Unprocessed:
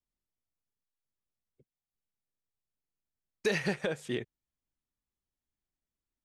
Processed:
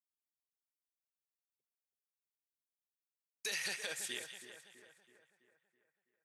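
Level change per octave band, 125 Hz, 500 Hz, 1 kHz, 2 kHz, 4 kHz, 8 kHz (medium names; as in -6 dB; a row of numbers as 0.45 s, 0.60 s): -25.0 dB, -17.0 dB, -10.5 dB, -4.5 dB, +1.0 dB, +6.5 dB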